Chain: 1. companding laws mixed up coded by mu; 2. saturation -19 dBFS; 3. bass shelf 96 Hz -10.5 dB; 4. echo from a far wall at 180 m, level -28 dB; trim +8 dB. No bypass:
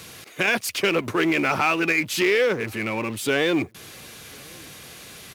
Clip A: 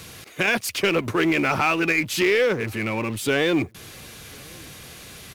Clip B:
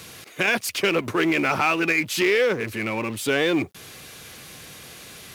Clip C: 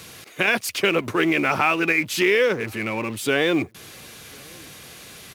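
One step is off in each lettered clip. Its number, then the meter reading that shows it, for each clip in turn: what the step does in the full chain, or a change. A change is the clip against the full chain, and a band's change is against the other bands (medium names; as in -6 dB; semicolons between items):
3, 125 Hz band +3.5 dB; 4, echo-to-direct -31.0 dB to none; 2, distortion -20 dB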